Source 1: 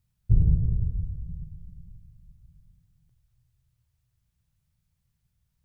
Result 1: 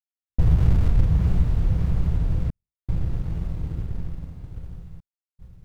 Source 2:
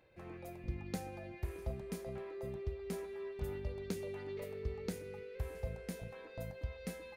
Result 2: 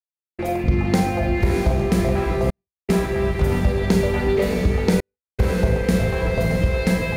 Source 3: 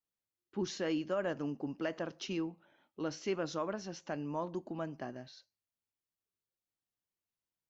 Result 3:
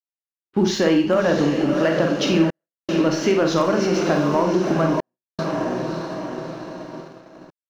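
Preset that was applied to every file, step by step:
in parallel at -5 dB: sample gate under -24.5 dBFS; on the sum: high shelf 6200 Hz -9.5 dB; on a send: diffused feedback echo 0.633 s, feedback 57%, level -7 dB; on the sum: sample leveller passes 1; compressor 3:1, threshold -34 dBFS; Schroeder reverb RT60 0.43 s, combs from 33 ms, DRR 4 dB; step gate "..xxxxxxxxxxx" 78 bpm -60 dB; expander -51 dBFS; normalise peaks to -6 dBFS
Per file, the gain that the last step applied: +13.5, +20.5, +17.0 dB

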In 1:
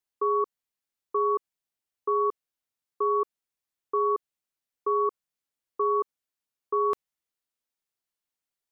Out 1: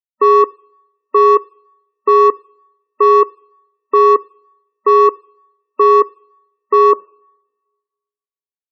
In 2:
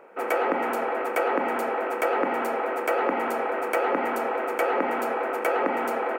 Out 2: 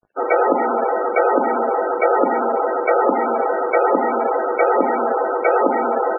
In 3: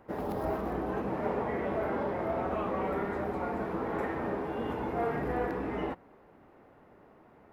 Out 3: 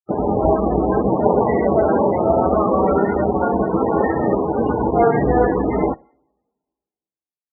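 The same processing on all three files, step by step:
crossover distortion -43 dBFS; two-slope reverb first 0.47 s, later 1.5 s, from -20 dB, DRR 19 dB; loudest bins only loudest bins 32; normalise peaks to -1.5 dBFS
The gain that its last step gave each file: +16.0, +10.0, +18.5 dB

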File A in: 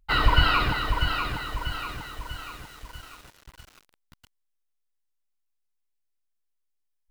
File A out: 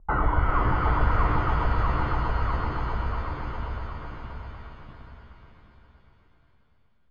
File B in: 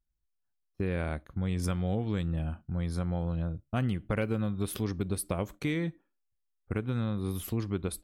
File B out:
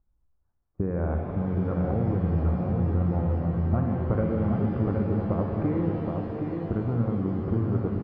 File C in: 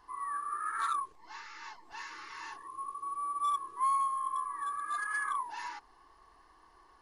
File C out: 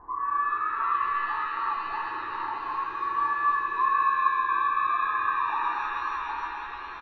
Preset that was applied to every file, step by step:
LPF 1200 Hz 24 dB/oct; compressor 2.5:1, threshold -40 dBFS; on a send: feedback echo 0.769 s, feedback 30%, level -5 dB; on the sum: shimmer reverb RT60 3.5 s, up +7 st, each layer -8 dB, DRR 2 dB; match loudness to -27 LUFS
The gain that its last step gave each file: +12.5, +11.0, +12.0 dB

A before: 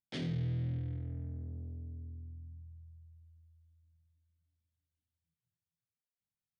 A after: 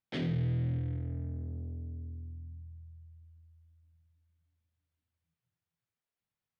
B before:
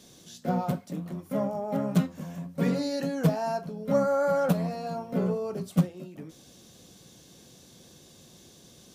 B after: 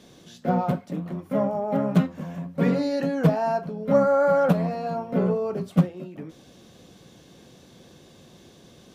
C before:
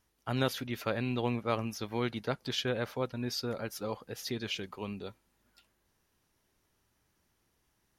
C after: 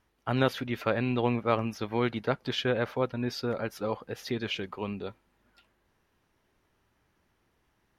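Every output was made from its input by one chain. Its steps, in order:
tone controls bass -2 dB, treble -12 dB; gain +5.5 dB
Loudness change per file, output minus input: +3.5, +4.5, +4.5 LU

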